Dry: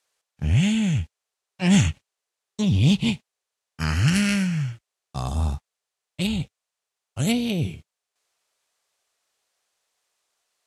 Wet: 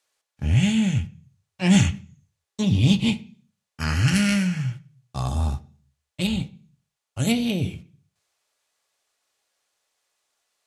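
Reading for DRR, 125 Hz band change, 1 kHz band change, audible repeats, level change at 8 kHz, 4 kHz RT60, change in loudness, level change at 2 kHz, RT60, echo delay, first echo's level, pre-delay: 8.0 dB, 0.0 dB, +1.0 dB, no echo, 0.0 dB, 0.50 s, +0.5 dB, +0.5 dB, 0.40 s, no echo, no echo, 3 ms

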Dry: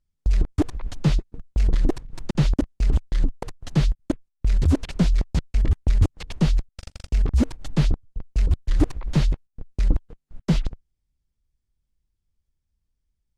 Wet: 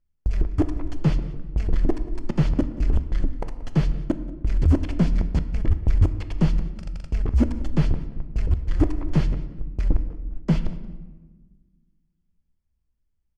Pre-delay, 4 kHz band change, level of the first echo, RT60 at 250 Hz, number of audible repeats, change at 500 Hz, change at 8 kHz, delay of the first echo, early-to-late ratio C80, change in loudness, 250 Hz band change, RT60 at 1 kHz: 3 ms, -7.0 dB, -19.5 dB, 2.0 s, 1, +0.5 dB, no reading, 181 ms, 13.0 dB, -0.5 dB, +0.5 dB, 1.2 s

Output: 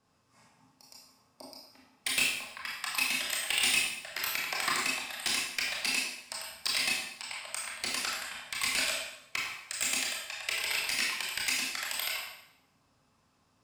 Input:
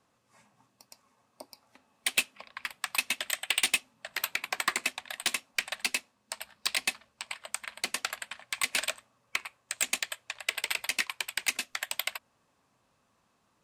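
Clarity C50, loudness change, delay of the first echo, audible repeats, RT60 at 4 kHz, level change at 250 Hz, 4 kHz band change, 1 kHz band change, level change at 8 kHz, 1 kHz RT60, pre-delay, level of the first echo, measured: 1.5 dB, +1.0 dB, no echo, no echo, 0.75 s, +3.5 dB, +2.0 dB, +0.5 dB, +0.5 dB, 0.80 s, 21 ms, no echo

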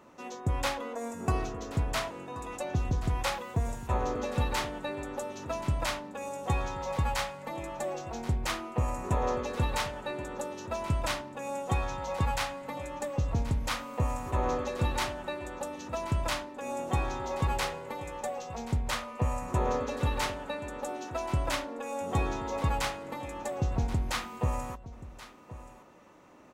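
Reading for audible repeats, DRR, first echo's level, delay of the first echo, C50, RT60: 1, no reverb, -16.0 dB, 1079 ms, no reverb, no reverb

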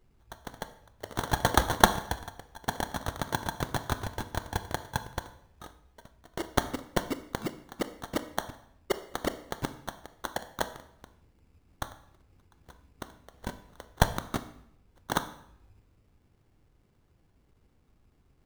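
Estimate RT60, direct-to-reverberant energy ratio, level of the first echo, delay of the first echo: 0.75 s, 11.0 dB, no echo, no echo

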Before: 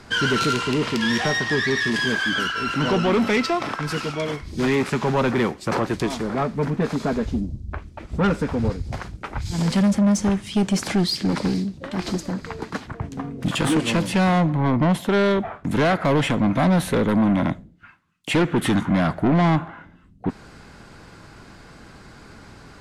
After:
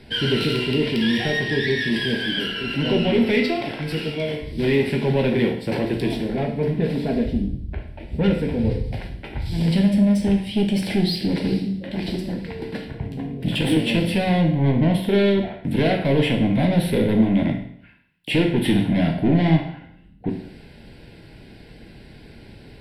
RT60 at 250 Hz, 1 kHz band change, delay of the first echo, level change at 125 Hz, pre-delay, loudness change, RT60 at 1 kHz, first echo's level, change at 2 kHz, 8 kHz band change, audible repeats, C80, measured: 0.65 s, -7.0 dB, no echo, +1.5 dB, 11 ms, +0.5 dB, 0.65 s, no echo, -2.5 dB, -9.0 dB, no echo, 10.5 dB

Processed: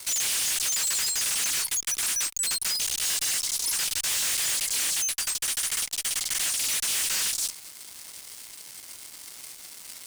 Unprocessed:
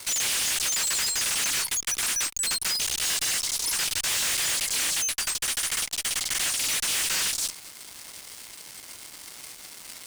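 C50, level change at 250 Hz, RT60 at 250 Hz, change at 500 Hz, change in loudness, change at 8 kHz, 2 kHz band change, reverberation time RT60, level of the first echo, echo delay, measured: no reverb, -4.5 dB, no reverb, -4.5 dB, -0.5 dB, 0.0 dB, -3.5 dB, no reverb, no echo, no echo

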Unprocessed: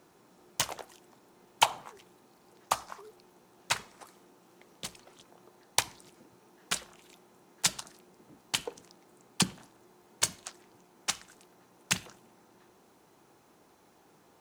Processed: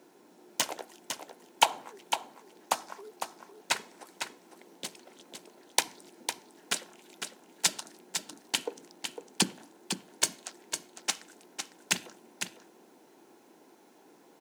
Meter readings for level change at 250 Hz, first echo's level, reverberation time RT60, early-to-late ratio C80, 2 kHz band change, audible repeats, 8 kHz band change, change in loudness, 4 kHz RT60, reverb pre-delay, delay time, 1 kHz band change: +1.5 dB, -7.5 dB, no reverb, no reverb, +1.5 dB, 1, +1.5 dB, -0.5 dB, no reverb, no reverb, 504 ms, +1.5 dB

